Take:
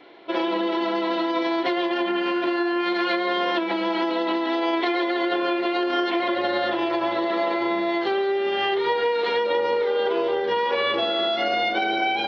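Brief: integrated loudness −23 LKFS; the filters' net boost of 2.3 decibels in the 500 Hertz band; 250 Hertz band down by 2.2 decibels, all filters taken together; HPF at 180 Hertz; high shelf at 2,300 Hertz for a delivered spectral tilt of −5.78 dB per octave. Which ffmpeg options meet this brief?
ffmpeg -i in.wav -af "highpass=180,equalizer=frequency=250:width_type=o:gain=-8,equalizer=frequency=500:width_type=o:gain=6,highshelf=frequency=2300:gain=-6" out.wav

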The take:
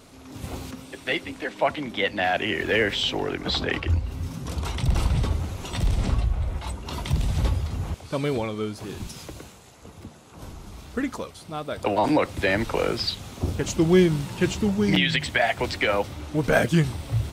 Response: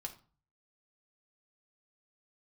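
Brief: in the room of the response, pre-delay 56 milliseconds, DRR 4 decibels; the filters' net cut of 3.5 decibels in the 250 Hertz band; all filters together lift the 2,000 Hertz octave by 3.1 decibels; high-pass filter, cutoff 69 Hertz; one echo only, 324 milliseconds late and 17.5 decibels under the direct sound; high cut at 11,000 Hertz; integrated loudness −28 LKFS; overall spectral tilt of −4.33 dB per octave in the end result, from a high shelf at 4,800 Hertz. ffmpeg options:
-filter_complex "[0:a]highpass=69,lowpass=11000,equalizer=frequency=250:width_type=o:gain=-5.5,equalizer=frequency=2000:width_type=o:gain=3,highshelf=frequency=4800:gain=5,aecho=1:1:324:0.133,asplit=2[link_01][link_02];[1:a]atrim=start_sample=2205,adelay=56[link_03];[link_02][link_03]afir=irnorm=-1:irlink=0,volume=-1.5dB[link_04];[link_01][link_04]amix=inputs=2:normalize=0,volume=-4.5dB"

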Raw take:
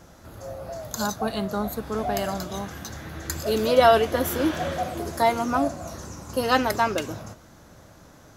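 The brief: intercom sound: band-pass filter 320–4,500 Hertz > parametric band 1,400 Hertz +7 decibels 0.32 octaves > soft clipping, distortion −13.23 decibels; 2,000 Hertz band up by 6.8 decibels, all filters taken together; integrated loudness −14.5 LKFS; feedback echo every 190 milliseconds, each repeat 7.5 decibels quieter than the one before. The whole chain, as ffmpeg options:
ffmpeg -i in.wav -af "highpass=320,lowpass=4500,equalizer=frequency=1400:width_type=o:width=0.32:gain=7,equalizer=frequency=2000:width_type=o:gain=5.5,aecho=1:1:190|380|570|760|950:0.422|0.177|0.0744|0.0312|0.0131,asoftclip=threshold=-11.5dB,volume=10dB" out.wav

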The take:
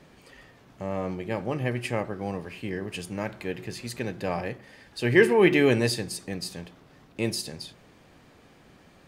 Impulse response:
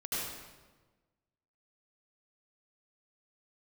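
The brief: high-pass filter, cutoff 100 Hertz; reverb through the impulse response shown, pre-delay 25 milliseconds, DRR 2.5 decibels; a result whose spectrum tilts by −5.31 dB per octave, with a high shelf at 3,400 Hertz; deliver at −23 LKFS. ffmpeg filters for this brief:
-filter_complex "[0:a]highpass=100,highshelf=frequency=3400:gain=-6,asplit=2[link_01][link_02];[1:a]atrim=start_sample=2205,adelay=25[link_03];[link_02][link_03]afir=irnorm=-1:irlink=0,volume=-7dB[link_04];[link_01][link_04]amix=inputs=2:normalize=0,volume=2.5dB"

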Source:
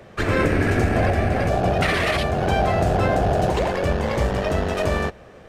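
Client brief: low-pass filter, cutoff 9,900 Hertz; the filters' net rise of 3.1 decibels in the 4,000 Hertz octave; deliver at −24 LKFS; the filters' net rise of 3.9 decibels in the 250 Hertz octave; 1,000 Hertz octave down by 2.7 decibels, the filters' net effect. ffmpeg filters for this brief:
ffmpeg -i in.wav -af "lowpass=9900,equalizer=frequency=250:width_type=o:gain=5.5,equalizer=frequency=1000:width_type=o:gain=-5,equalizer=frequency=4000:width_type=o:gain=4.5,volume=-3.5dB" out.wav

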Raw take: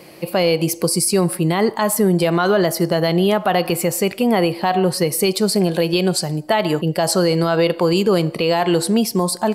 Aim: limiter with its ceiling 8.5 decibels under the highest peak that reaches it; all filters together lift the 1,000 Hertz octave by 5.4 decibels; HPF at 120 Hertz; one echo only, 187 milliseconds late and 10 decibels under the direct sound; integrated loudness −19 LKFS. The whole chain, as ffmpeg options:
ffmpeg -i in.wav -af "highpass=120,equalizer=frequency=1000:width_type=o:gain=7.5,alimiter=limit=-9.5dB:level=0:latency=1,aecho=1:1:187:0.316" out.wav

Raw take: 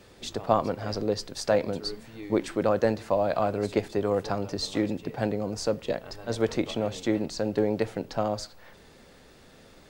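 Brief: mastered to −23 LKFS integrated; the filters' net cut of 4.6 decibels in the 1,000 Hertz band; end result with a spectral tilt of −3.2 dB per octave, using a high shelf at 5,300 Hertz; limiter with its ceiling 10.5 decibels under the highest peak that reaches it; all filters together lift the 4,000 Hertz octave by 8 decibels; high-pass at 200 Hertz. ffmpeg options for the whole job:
ffmpeg -i in.wav -af "highpass=200,equalizer=frequency=1000:width_type=o:gain=-7.5,equalizer=frequency=4000:width_type=o:gain=6.5,highshelf=frequency=5300:gain=7,volume=9.5dB,alimiter=limit=-11.5dB:level=0:latency=1" out.wav

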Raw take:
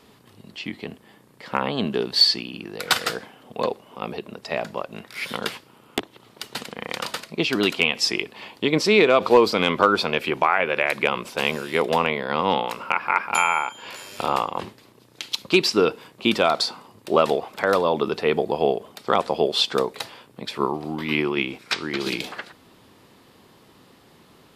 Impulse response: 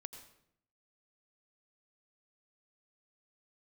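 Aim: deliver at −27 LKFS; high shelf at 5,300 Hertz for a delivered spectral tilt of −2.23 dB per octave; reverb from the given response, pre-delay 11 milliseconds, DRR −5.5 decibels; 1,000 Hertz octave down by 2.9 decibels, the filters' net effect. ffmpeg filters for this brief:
-filter_complex "[0:a]equalizer=frequency=1000:width_type=o:gain=-3.5,highshelf=frequency=5300:gain=-6,asplit=2[link_01][link_02];[1:a]atrim=start_sample=2205,adelay=11[link_03];[link_02][link_03]afir=irnorm=-1:irlink=0,volume=10dB[link_04];[link_01][link_04]amix=inputs=2:normalize=0,volume=-9.5dB"

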